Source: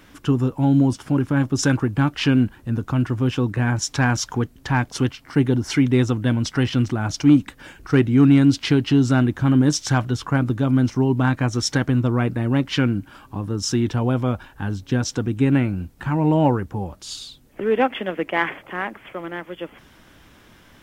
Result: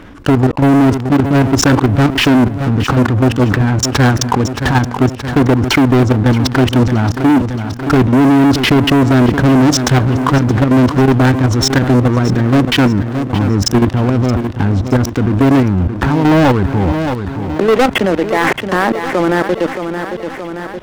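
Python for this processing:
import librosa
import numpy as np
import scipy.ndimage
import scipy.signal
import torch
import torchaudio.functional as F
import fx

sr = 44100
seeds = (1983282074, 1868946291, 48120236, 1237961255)

p1 = fx.lowpass(x, sr, hz=1100.0, slope=6)
p2 = fx.peak_eq(p1, sr, hz=150.0, db=-3.5, octaves=0.32)
p3 = fx.level_steps(p2, sr, step_db=19)
p4 = fx.leveller(p3, sr, passes=5)
p5 = p4 + fx.echo_feedback(p4, sr, ms=623, feedback_pct=42, wet_db=-15.0, dry=0)
p6 = fx.env_flatten(p5, sr, amount_pct=50)
y = p6 * 10.0 ** (2.5 / 20.0)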